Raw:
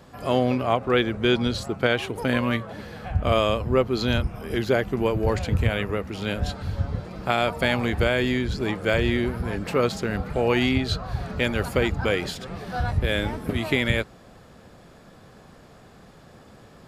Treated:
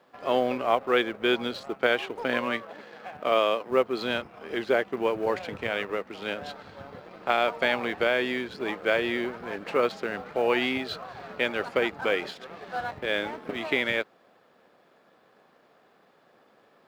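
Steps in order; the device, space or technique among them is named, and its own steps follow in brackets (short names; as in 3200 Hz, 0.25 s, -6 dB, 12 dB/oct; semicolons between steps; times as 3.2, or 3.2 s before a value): phone line with mismatched companding (BPF 360–3500 Hz; G.711 law mismatch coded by A); 2.45–3.7 HPF 97 Hz -> 240 Hz 12 dB/oct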